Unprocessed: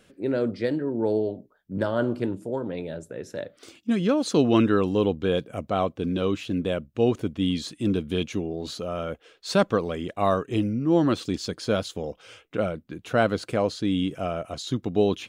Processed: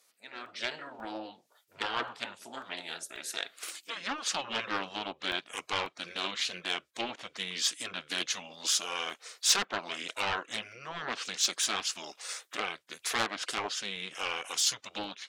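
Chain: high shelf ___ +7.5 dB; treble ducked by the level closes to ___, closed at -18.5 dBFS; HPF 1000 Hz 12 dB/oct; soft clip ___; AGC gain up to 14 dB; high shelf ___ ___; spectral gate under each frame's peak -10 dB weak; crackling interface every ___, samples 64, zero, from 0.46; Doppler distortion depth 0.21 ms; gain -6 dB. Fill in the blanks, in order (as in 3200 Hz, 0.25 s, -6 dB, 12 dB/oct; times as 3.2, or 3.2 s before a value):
5500 Hz, 1500 Hz, -24 dBFS, 2200 Hz, +7.5 dB, 0.54 s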